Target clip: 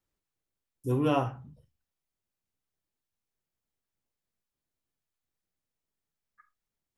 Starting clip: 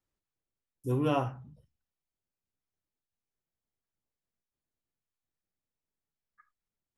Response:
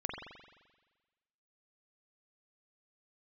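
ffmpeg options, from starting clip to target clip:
-filter_complex "[0:a]asplit=2[a][b];[1:a]atrim=start_sample=2205,atrim=end_sample=3528[c];[b][c]afir=irnorm=-1:irlink=0,volume=-10.5dB[d];[a][d]amix=inputs=2:normalize=0"

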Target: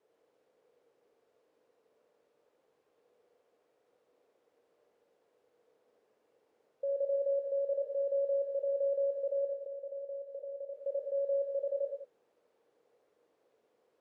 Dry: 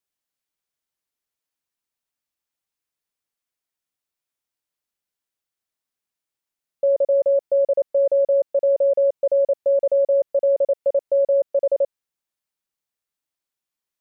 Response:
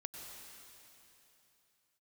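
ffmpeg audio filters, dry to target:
-filter_complex "[0:a]aeval=exprs='val(0)+0.5*0.0178*sgn(val(0))':c=same,asplit=3[a][b][c];[a]afade=t=out:st=9.45:d=0.02[d];[b]acompressor=threshold=-26dB:ratio=6,afade=t=in:st=9.45:d=0.02,afade=t=out:st=10.73:d=0.02[e];[c]afade=t=in:st=10.73:d=0.02[f];[d][e][f]amix=inputs=3:normalize=0,bandpass=f=470:t=q:w=5.3:csg=0[g];[1:a]atrim=start_sample=2205,afade=t=out:st=0.43:d=0.01,atrim=end_sample=19404,asetrate=83790,aresample=44100[h];[g][h]afir=irnorm=-1:irlink=0"

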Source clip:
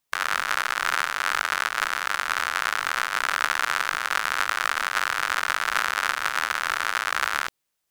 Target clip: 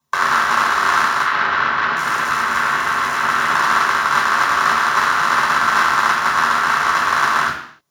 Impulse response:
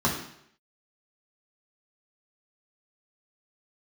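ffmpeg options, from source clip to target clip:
-filter_complex "[0:a]asettb=1/sr,asplit=3[a][b][c];[a]atrim=end=1.234[d];[b]atrim=start=1.23:end=3.55,asetpts=PTS-STARTPTS,afade=t=in:d=0.004:c=qsin,afade=t=out:st=2.316:d=0.004:c=qsin,acrossover=split=970|4600[e][f][g];[e]adelay=80[h];[g]adelay=730[i];[h][f][i]amix=inputs=3:normalize=0,atrim=end_sample=102312[j];[c]atrim=start=3.546[k];[d][j]acrossfade=d=0.004:c1=hsin:c2=qsin[l];[l][k]acrossfade=d=0.004:c1=qsin:c2=hsin[m];[1:a]atrim=start_sample=2205,afade=t=out:st=0.37:d=0.01,atrim=end_sample=16758[n];[m][n]afir=irnorm=-1:irlink=0,volume=-3.5dB"

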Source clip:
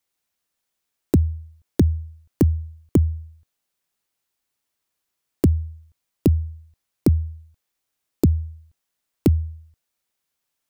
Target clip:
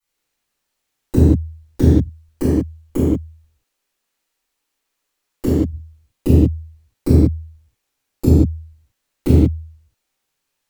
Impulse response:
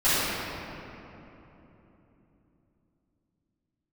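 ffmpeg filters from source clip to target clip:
-filter_complex "[0:a]asettb=1/sr,asplit=3[a][b][c];[a]atrim=end=1.894[d];[b]atrim=start=1.89:end=5.6,asetpts=PTS-STARTPTS,afade=t=in:d=0.004:c=qsin,afade=t=out:st=3.706:d=0.004:c=qsin,equalizer=f=99:w=0.83:g=-9.5[e];[c]atrim=start=5.596[f];[d][e]acrossfade=d=0.004:c1=hsin:c2=qsin[g];[g][f]acrossfade=d=0.004:c1=qsin:c2=hsin[h];[1:a]atrim=start_sample=2205,afade=t=out:st=0.35:d=0.01,atrim=end_sample=15876,asetrate=66150,aresample=44100[i];[h][i]afir=irnorm=-1:irlink=0,volume=-7dB"

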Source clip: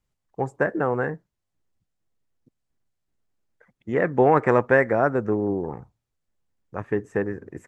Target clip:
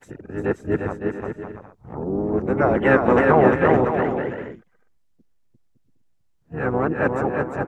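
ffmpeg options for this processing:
-filter_complex "[0:a]areverse,aecho=1:1:350|560|686|761.6|807:0.631|0.398|0.251|0.158|0.1,asplit=4[a][b][c][d];[b]asetrate=22050,aresample=44100,atempo=2,volume=-9dB[e];[c]asetrate=35002,aresample=44100,atempo=1.25992,volume=-6dB[f];[d]asetrate=66075,aresample=44100,atempo=0.66742,volume=-15dB[g];[a][e][f][g]amix=inputs=4:normalize=0"

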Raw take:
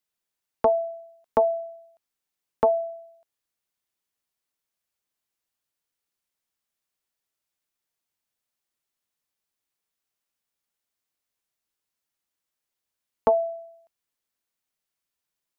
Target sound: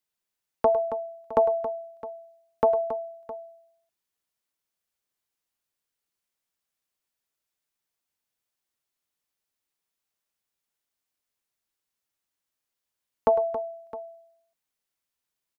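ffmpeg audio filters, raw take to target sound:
-af "aecho=1:1:103|105|274|662:0.126|0.178|0.266|0.141,volume=-1dB"

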